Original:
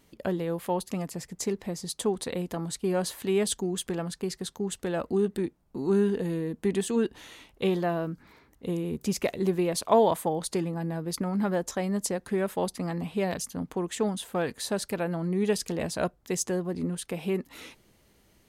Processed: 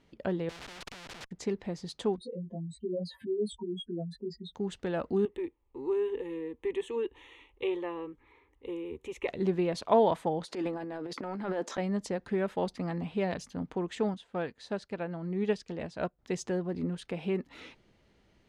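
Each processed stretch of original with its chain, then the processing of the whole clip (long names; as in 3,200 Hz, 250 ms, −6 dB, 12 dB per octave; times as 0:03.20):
0:00.49–0:01.31: low-shelf EQ 300 Hz +9 dB + comparator with hysteresis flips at −40.5 dBFS + every bin compressed towards the loudest bin 4 to 1
0:02.16–0:04.55: expanding power law on the bin magnitudes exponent 3.9 + chorus effect 1.2 Hz, delay 17 ms, depth 2.1 ms
0:05.25–0:09.28: parametric band 150 Hz −8 dB 1.1 octaves + phaser with its sweep stopped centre 990 Hz, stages 8
0:10.45–0:11.78: high-pass filter 250 Hz 24 dB per octave + transient designer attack −10 dB, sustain +10 dB
0:14.14–0:16.19: low-pass filter 9,300 Hz + expander for the loud parts, over −44 dBFS
whole clip: low-pass filter 4,000 Hz 12 dB per octave; notch filter 1,100 Hz, Q 19; level −2.5 dB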